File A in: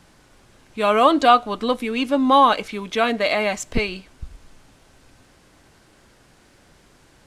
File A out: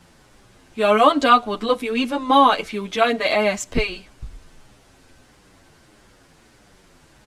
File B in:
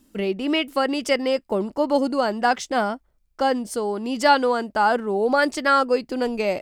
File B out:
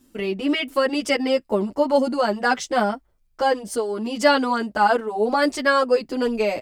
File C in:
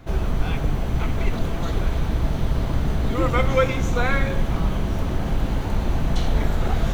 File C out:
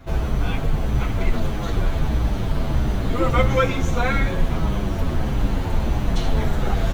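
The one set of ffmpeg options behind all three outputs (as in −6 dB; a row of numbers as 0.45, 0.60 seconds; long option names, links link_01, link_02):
-filter_complex "[0:a]asplit=2[link_01][link_02];[link_02]adelay=8.5,afreqshift=-1.6[link_03];[link_01][link_03]amix=inputs=2:normalize=1,volume=4dB"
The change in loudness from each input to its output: +0.5, +0.5, +1.0 LU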